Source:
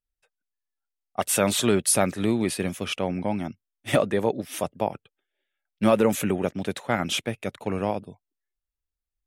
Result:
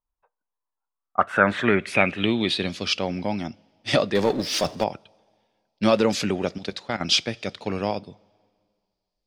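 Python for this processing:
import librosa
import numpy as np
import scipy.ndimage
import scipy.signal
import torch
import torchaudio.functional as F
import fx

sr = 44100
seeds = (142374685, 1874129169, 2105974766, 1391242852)

y = fx.high_shelf(x, sr, hz=4600.0, db=4.0)
y = fx.level_steps(y, sr, step_db=13, at=(6.58, 7.01))
y = fx.rev_double_slope(y, sr, seeds[0], early_s=0.25, late_s=2.1, knee_db=-18, drr_db=18.5)
y = fx.filter_sweep_lowpass(y, sr, from_hz=1000.0, to_hz=4800.0, start_s=0.85, end_s=2.86, q=6.2)
y = fx.power_curve(y, sr, exponent=0.7, at=(4.15, 4.84))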